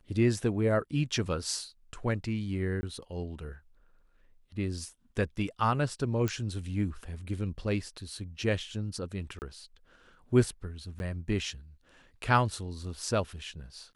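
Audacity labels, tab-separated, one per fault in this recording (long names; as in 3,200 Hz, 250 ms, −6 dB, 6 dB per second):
2.810000	2.830000	drop-out 20 ms
6.280000	6.280000	click −17 dBFS
9.390000	9.420000	drop-out 29 ms
10.990000	11.000000	drop-out 11 ms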